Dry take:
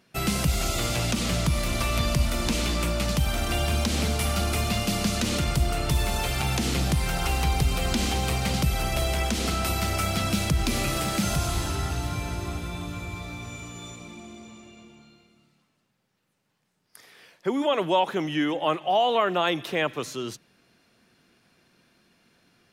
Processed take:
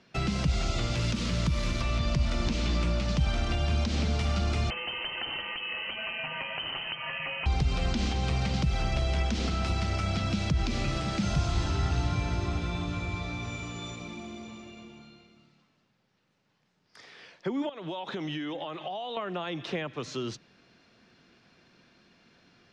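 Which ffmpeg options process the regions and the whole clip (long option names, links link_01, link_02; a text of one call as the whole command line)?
ffmpeg -i in.wav -filter_complex "[0:a]asettb=1/sr,asplit=3[link_01][link_02][link_03];[link_01]atrim=end=0.954[link_04];[link_02]atrim=start=0.95:end=1.81,asetpts=PTS-STARTPTS,afade=type=in:duration=0.004:curve=qsin,afade=type=out:start_time=0.856:duration=0.004:curve=qsin,asuperstop=centerf=750:order=4:qfactor=3.9,equalizer=frequency=12000:width_type=o:width=0.58:gain=11.5,aeval=exprs='val(0)*gte(abs(val(0)),0.0335)':channel_layout=same[link_05];[link_03]atrim=start=1.806[link_06];[link_04][link_05]acrossfade=duration=0.004:curve1=hsin:curve2=qsin[link_07];[link_07][link_06]acrossfade=duration=0.004:curve1=qsin:curve2=hsin,asettb=1/sr,asplit=3[link_08][link_09][link_10];[link_08]atrim=end=4.704[link_11];[link_09]atrim=start=4.7:end=7.46,asetpts=PTS-STARTPTS,afade=type=in:duration=0.004:curve=qsin,afade=type=out:start_time=2.756:duration=0.004:curve=qsin,highpass=frequency=240:width=0.5412,highpass=frequency=240:width=1.3066,lowpass=frequency=2800:width_type=q:width=0.5098,lowpass=frequency=2800:width_type=q:width=0.6013,lowpass=frequency=2800:width_type=q:width=0.9,lowpass=frequency=2800:width_type=q:width=2.563,afreqshift=-3300[link_12];[link_10]atrim=start=7.456[link_13];[link_11][link_12]acrossfade=duration=0.004:curve1=hsin:curve2=qsin[link_14];[link_14][link_13]acrossfade=duration=0.004:curve1=qsin:curve2=hsin,asettb=1/sr,asplit=3[link_15][link_16][link_17];[link_15]atrim=end=17.694[link_18];[link_16]atrim=start=17.69:end=19.17,asetpts=PTS-STARTPTS,afade=type=in:duration=0.004:curve=qsin,afade=type=out:start_time=1.476:duration=0.004:curve=qsin,equalizer=frequency=3700:width=6.2:gain=10,acompressor=threshold=-31dB:ratio=12:attack=3.2:release=140:knee=1:detection=peak[link_19];[link_17]atrim=start=19.166[link_20];[link_18][link_19]acrossfade=duration=0.004:curve1=hsin:curve2=qsin[link_21];[link_21][link_20]acrossfade=duration=0.004:curve1=qsin:curve2=hsin,lowpass=frequency=6000:width=0.5412,lowpass=frequency=6000:width=1.3066,alimiter=limit=-18dB:level=0:latency=1:release=322,acrossover=split=230[link_22][link_23];[link_23]acompressor=threshold=-36dB:ratio=3[link_24];[link_22][link_24]amix=inputs=2:normalize=0,volume=2dB" out.wav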